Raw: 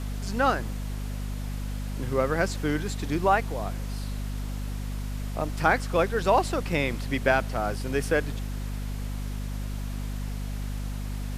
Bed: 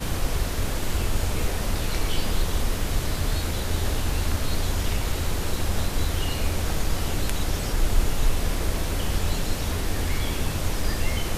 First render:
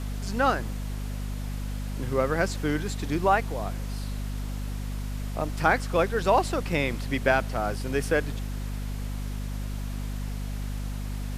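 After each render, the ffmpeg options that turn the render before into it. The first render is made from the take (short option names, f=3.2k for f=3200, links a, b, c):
-af anull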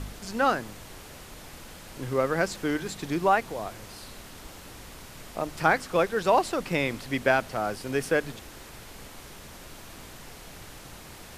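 -af "bandreject=f=50:t=h:w=4,bandreject=f=100:t=h:w=4,bandreject=f=150:t=h:w=4,bandreject=f=200:t=h:w=4,bandreject=f=250:t=h:w=4"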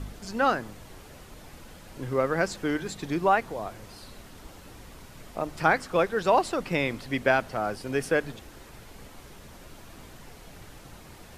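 -af "afftdn=nr=6:nf=-46"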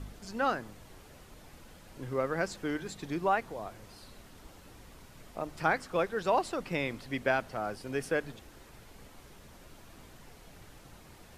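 -af "volume=-6dB"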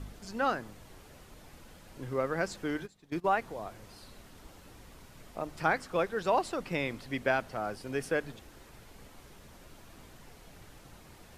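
-filter_complex "[0:a]asplit=3[a][b][c];[a]afade=t=out:st=2.85:d=0.02[d];[b]agate=range=-19dB:threshold=-36dB:ratio=16:release=100:detection=peak,afade=t=in:st=2.85:d=0.02,afade=t=out:st=3.31:d=0.02[e];[c]afade=t=in:st=3.31:d=0.02[f];[d][e][f]amix=inputs=3:normalize=0"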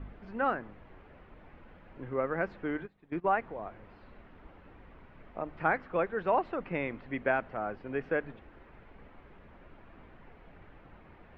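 -af "lowpass=f=2.4k:w=0.5412,lowpass=f=2.4k:w=1.3066,equalizer=f=120:t=o:w=0.63:g=-4"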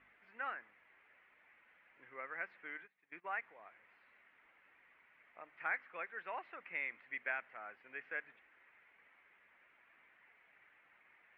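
-af "bandpass=f=2.1k:t=q:w=3:csg=0"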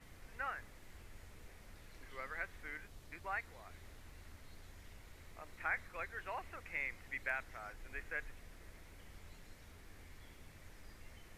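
-filter_complex "[1:a]volume=-31.5dB[a];[0:a][a]amix=inputs=2:normalize=0"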